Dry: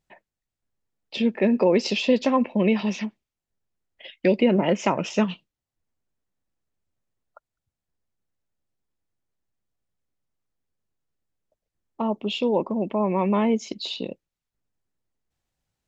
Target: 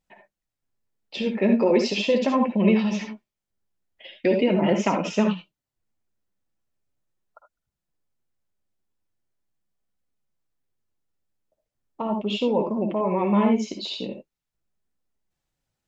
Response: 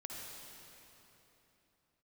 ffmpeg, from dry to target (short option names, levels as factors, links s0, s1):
-filter_complex "[1:a]atrim=start_sample=2205,atrim=end_sample=3969[s0];[0:a][s0]afir=irnorm=-1:irlink=0,flanger=delay=3.7:depth=7.2:regen=-41:speed=0.4:shape=triangular,volume=2.66"